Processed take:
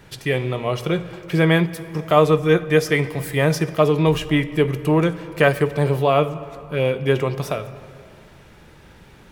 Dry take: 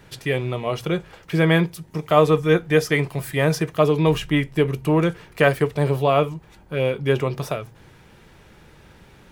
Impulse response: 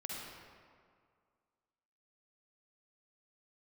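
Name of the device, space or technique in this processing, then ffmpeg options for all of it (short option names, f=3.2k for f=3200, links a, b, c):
compressed reverb return: -filter_complex "[0:a]asplit=2[a][b];[1:a]atrim=start_sample=2205[c];[b][c]afir=irnorm=-1:irlink=0,acompressor=threshold=-19dB:ratio=6,volume=-9dB[d];[a][d]amix=inputs=2:normalize=0"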